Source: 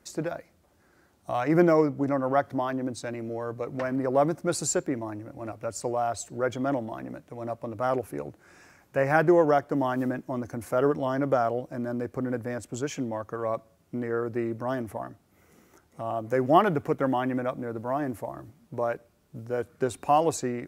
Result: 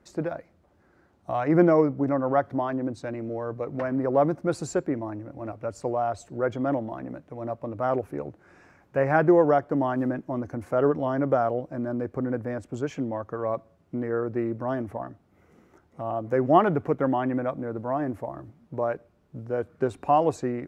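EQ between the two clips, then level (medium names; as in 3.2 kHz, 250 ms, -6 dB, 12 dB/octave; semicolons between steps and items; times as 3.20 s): low-pass 1.5 kHz 6 dB/octave; +2.0 dB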